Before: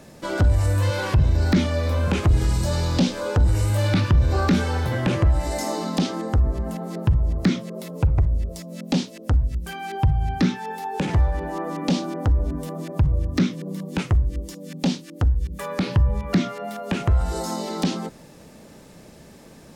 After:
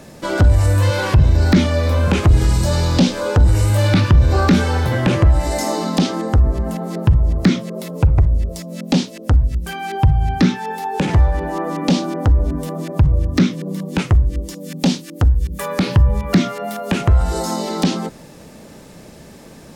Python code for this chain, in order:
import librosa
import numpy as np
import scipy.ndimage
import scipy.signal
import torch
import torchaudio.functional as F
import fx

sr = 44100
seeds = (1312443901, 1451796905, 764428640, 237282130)

y = fx.high_shelf(x, sr, hz=8900.0, db=7.5, at=(14.57, 17.01))
y = y * librosa.db_to_amplitude(6.0)